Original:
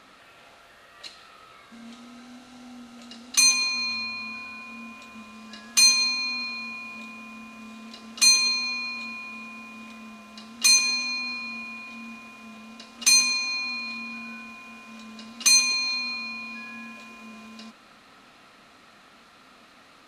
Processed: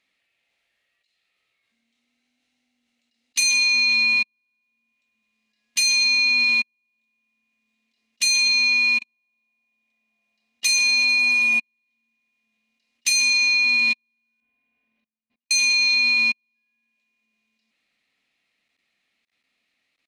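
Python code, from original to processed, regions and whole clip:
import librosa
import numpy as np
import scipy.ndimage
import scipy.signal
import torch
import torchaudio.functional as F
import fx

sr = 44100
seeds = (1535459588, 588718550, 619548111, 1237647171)

y = fx.chain(x, sr, fx.peak_eq(hz=700.0, db=8.0, octaves=1.0),
    fx.echo_thinned(ms=110, feedback_pct=84, hz=470.0, wet_db=-24.0), at=(9.09, 11.59))
y = fx.chain(y, sr, fx.spacing_loss(db_at_10k=37),
    fx.doubler(ms=42.0, db=-4.5),
    fx.over_compress(threshold_db=-48.0, ratio=-0.5), at=(14.4, 15.51))
y = fx.high_shelf_res(y, sr, hz=1700.0, db=7.0, q=3.0)
y = fx.level_steps(y, sr, step_db=24)
y = fx.upward_expand(y, sr, threshold_db=-45.0, expansion=2.5)
y = F.gain(torch.from_numpy(y), 6.5).numpy()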